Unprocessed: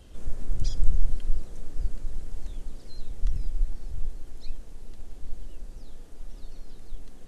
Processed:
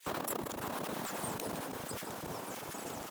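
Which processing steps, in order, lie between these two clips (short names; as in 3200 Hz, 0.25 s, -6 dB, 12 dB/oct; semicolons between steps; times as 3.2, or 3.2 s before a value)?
gliding pitch shift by -5 st starting unshifted; feedback echo 0.37 s, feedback 43%, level -12 dB; negative-ratio compressor -23 dBFS, ratio -1; low shelf 130 Hz -9.5 dB; flange 1.5 Hz, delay 0.7 ms, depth 2.2 ms, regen -73%; low shelf 370 Hz +4 dB; expander -47 dBFS; spectral gate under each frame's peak -25 dB weak; speed mistake 33 rpm record played at 78 rpm; sustainer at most 27 dB/s; gain +15.5 dB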